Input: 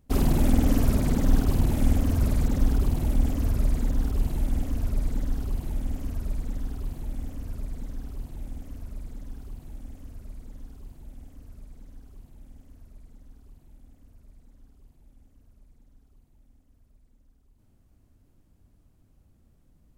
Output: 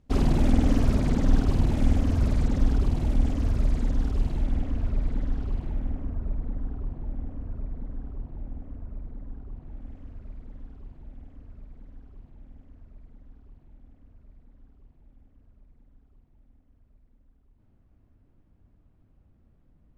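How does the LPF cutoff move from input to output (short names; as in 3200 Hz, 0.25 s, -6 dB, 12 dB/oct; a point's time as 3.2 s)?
4.18 s 5700 Hz
4.65 s 3200 Hz
5.55 s 3200 Hz
6.13 s 1300 Hz
9.47 s 1300 Hz
9.94 s 2400 Hz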